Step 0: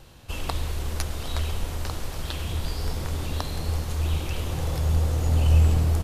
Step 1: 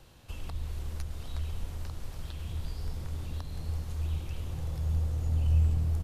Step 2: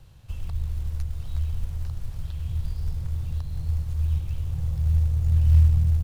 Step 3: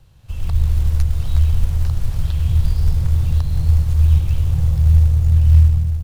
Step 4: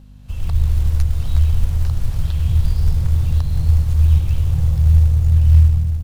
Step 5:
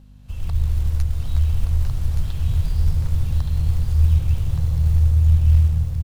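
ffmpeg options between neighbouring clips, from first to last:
-filter_complex "[0:a]acrossover=split=200[a][b];[b]acompressor=threshold=-48dB:ratio=2[c];[a][c]amix=inputs=2:normalize=0,volume=-6.5dB"
-af "acrusher=bits=6:mode=log:mix=0:aa=0.000001,lowshelf=f=180:t=q:w=1.5:g=9.5,volume=-3dB"
-af "dynaudnorm=f=110:g=7:m=13dB"
-af "aeval=exprs='val(0)+0.01*(sin(2*PI*50*n/s)+sin(2*PI*2*50*n/s)/2+sin(2*PI*3*50*n/s)/3+sin(2*PI*4*50*n/s)/4+sin(2*PI*5*50*n/s)/5)':c=same"
-af "aecho=1:1:1172:0.531,volume=-4dB"

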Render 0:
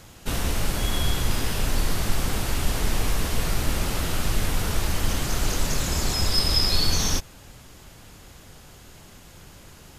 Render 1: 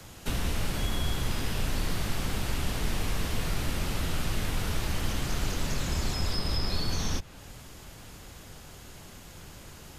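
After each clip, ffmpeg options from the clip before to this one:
-filter_complex "[0:a]acrossover=split=90|250|1900|4400[a][b][c][d][e];[a]acompressor=threshold=-27dB:ratio=4[f];[b]acompressor=threshold=-35dB:ratio=4[g];[c]acompressor=threshold=-39dB:ratio=4[h];[d]acompressor=threshold=-41dB:ratio=4[i];[e]acompressor=threshold=-44dB:ratio=4[j];[f][g][h][i][j]amix=inputs=5:normalize=0"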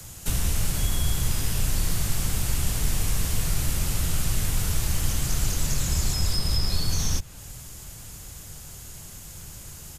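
-af "firequalizer=gain_entry='entry(140,0);entry(230,-8);entry(3800,-4);entry(7200,6)':delay=0.05:min_phase=1,volume=5.5dB"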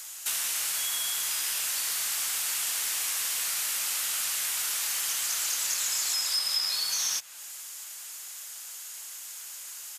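-af "highpass=1.3k,volume=3dB"

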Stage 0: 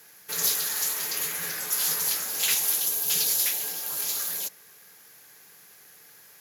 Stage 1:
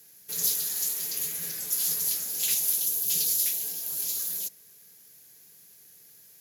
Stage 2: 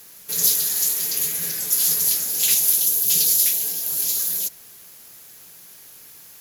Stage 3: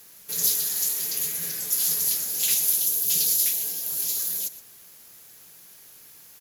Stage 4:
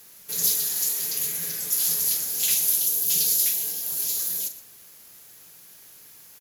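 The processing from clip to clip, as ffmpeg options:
-af "equalizer=f=1.2k:t=o:w=2.6:g=-15"
-af "acrusher=bits=8:mix=0:aa=0.000001,volume=8dB"
-af "aecho=1:1:119:0.168,volume=-4.5dB"
-filter_complex "[0:a]asplit=2[a][b];[b]adelay=42,volume=-10.5dB[c];[a][c]amix=inputs=2:normalize=0"

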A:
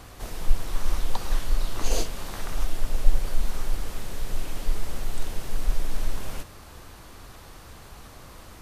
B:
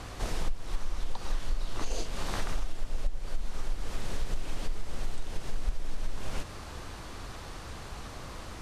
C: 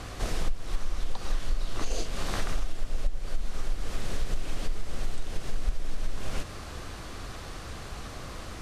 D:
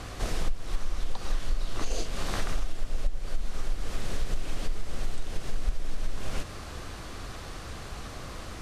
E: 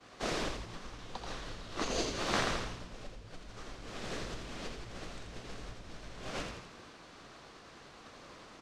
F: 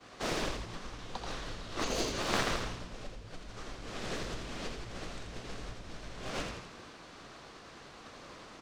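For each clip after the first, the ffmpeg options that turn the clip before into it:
-af "acompressor=threshold=-27dB:ratio=10,lowpass=8.2k,volume=3.5dB"
-af "equalizer=f=910:w=7.4:g=-6,volume=2.5dB"
-af anull
-filter_complex "[0:a]acrossover=split=160 7400:gain=0.1 1 0.141[a][b][c];[a][b][c]amix=inputs=3:normalize=0,agate=range=-33dB:threshold=-33dB:ratio=3:detection=peak,asplit=8[d][e][f][g][h][i][j][k];[e]adelay=83,afreqshift=-62,volume=-5dB[l];[f]adelay=166,afreqshift=-124,volume=-10.2dB[m];[g]adelay=249,afreqshift=-186,volume=-15.4dB[n];[h]adelay=332,afreqshift=-248,volume=-20.6dB[o];[i]adelay=415,afreqshift=-310,volume=-25.8dB[p];[j]adelay=498,afreqshift=-372,volume=-31dB[q];[k]adelay=581,afreqshift=-434,volume=-36.2dB[r];[d][l][m][n][o][p][q][r]amix=inputs=8:normalize=0,volume=4dB"
-af "aeval=exprs='clip(val(0),-1,0.0168)':c=same,volume=2.5dB"

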